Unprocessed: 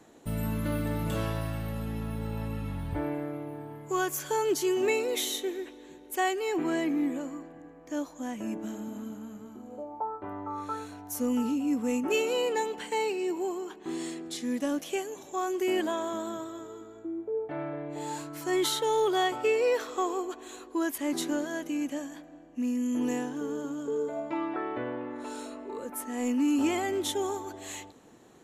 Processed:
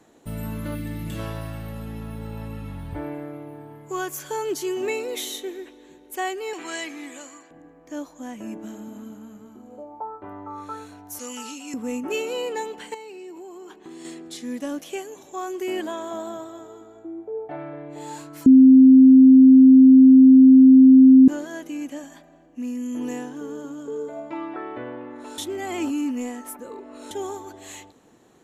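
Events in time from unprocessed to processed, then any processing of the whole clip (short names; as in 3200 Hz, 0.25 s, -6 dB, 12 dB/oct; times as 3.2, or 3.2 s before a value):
0.75–1.19 spectral gain 350–1600 Hz -8 dB
6.53–7.51 weighting filter ITU-R 468
11.19–11.74 weighting filter ITU-R 468
12.94–14.05 compressor, threshold -37 dBFS
16.11–17.56 bell 750 Hz +11 dB 0.35 oct
18.46–21.28 bleep 262 Hz -6.5 dBFS
22.03–22.46 comb 5 ms, depth 66%
25.38–27.11 reverse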